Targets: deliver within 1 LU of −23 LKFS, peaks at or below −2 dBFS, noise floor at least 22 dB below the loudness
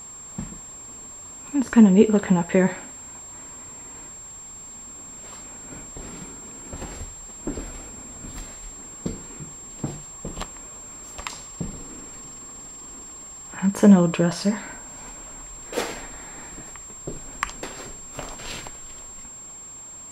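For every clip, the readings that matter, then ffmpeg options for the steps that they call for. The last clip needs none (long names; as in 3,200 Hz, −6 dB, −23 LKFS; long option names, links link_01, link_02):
interfering tone 7,500 Hz; level of the tone −38 dBFS; integrated loudness −24.5 LKFS; sample peak −3.0 dBFS; target loudness −23.0 LKFS
→ -af "bandreject=frequency=7500:width=30"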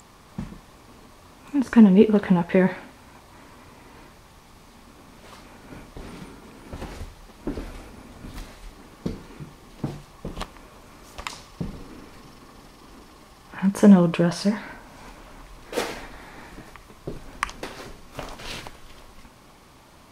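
interfering tone none found; integrated loudness −22.0 LKFS; sample peak −3.5 dBFS; target loudness −23.0 LKFS
→ -af "volume=-1dB"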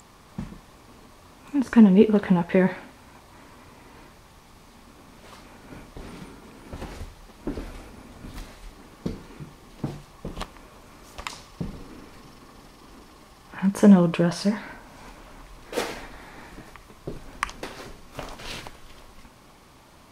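integrated loudness −23.0 LKFS; sample peak −4.5 dBFS; background noise floor −52 dBFS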